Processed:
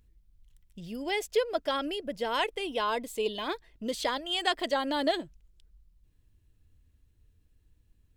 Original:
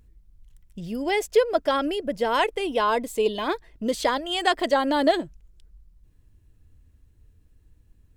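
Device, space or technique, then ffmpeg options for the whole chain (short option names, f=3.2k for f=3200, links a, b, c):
presence and air boost: -af "equalizer=f=3.4k:t=o:w=1.4:g=5.5,highshelf=f=9.6k:g=4.5,volume=-8dB"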